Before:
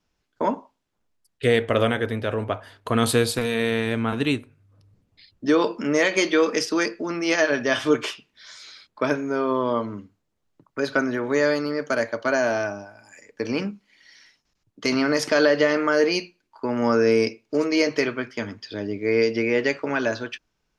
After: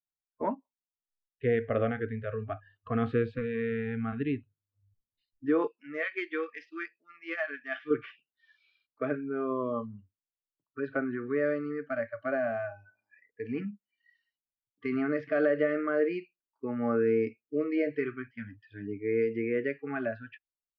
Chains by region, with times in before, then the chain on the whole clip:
5.67–7.91 s: tilt shelf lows -6.5 dB, about 1.3 kHz + upward expansion, over -36 dBFS
whole clip: low-pass 2 kHz 24 dB/octave; spectral noise reduction 27 dB; dynamic bell 1.4 kHz, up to -4 dB, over -42 dBFS, Q 2; trim -7 dB

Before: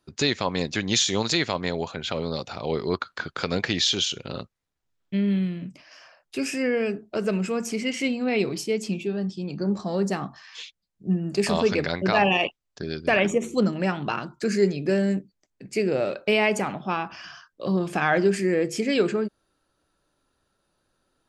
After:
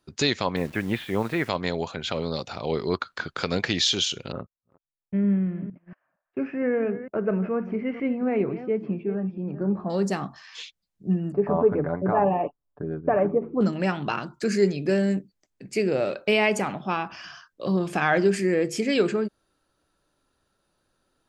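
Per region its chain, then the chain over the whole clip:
0.56–1.49 s: inverse Chebyshev low-pass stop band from 8.7 kHz, stop band 70 dB + word length cut 8-bit, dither none
4.32–9.90 s: chunks repeated in reverse 230 ms, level -13 dB + low-pass 1.7 kHz 24 dB/octave + gate -44 dBFS, range -21 dB
11.32–13.61 s: low-pass 1.2 kHz 24 dB/octave + comb 6.9 ms, depth 43%
whole clip: none

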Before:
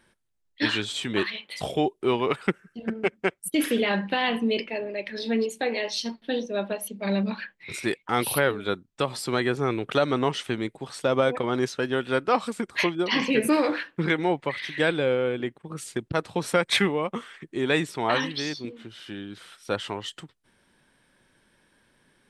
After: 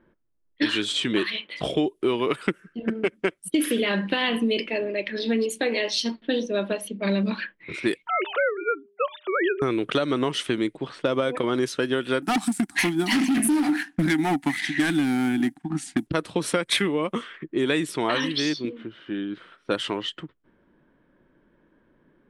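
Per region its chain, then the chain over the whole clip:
8.07–9.62 s: formants replaced by sine waves + bass shelf 250 Hz -10 dB + de-hum 201.5 Hz, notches 3
12.22–16.07 s: companding laws mixed up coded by A + FFT filter 100 Hz 0 dB, 280 Hz +13 dB, 520 Hz -29 dB, 760 Hz +15 dB, 1.1 kHz -5 dB, 1.7 kHz +6 dB, 3.1 kHz -2 dB, 7.3 kHz +9 dB + overload inside the chain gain 18.5 dB
whole clip: level-controlled noise filter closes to 1 kHz, open at -23.5 dBFS; graphic EQ with 31 bands 100 Hz -11 dB, 315 Hz +6 dB, 800 Hz -7 dB, 3.15 kHz +3 dB, 10 kHz +9 dB; compression, threshold -24 dBFS; trim +4.5 dB

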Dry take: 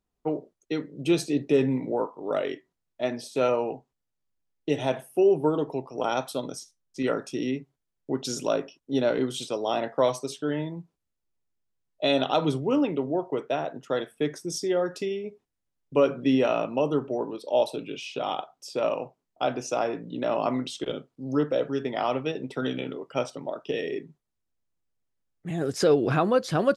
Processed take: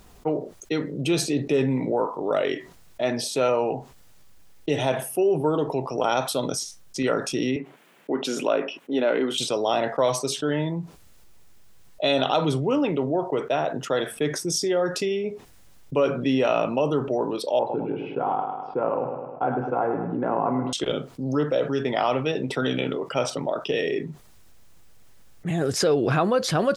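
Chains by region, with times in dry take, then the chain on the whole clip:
7.56–9.38 s: high-pass 210 Hz 24 dB/octave + resonant high shelf 3.6 kHz -10 dB, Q 1.5
17.59–20.73 s: low-pass 1.5 kHz 24 dB/octave + comb of notches 610 Hz + feedback delay 104 ms, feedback 43%, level -10 dB
whole clip: peaking EQ 280 Hz -3.5 dB 1.2 oct; level flattener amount 50%

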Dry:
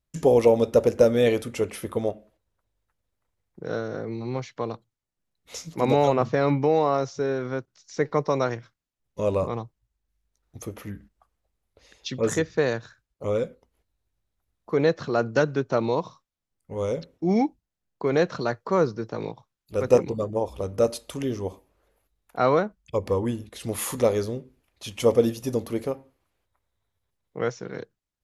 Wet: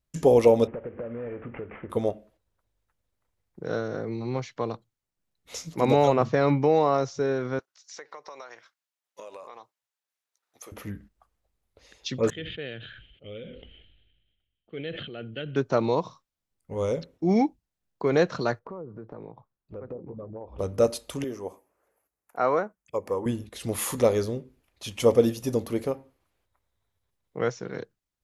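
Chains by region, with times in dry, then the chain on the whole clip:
0.67–1.90 s: CVSD coder 16 kbps + low-pass 2.1 kHz 24 dB/octave + compression, threshold -33 dBFS
7.59–10.72 s: high-pass 770 Hz + compression 12:1, threshold -38 dBFS
12.30–15.56 s: four-pole ladder low-pass 3.2 kHz, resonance 90% + static phaser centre 2.4 kHz, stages 4 + decay stretcher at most 39 dB/s
18.59–20.59 s: low-pass that closes with the level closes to 580 Hz, closed at -15 dBFS + low-pass 1.3 kHz + compression 4:1, threshold -38 dBFS
21.24–23.26 s: high-pass 540 Hz 6 dB/octave + peaking EQ 3.7 kHz -13.5 dB 1 oct
whole clip: none

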